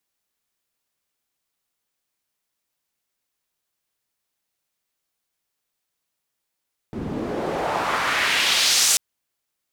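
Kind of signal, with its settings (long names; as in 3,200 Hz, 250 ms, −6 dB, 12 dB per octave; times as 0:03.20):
filter sweep on noise pink, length 2.04 s bandpass, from 190 Hz, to 7,700 Hz, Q 1.4, exponential, gain ramp +13 dB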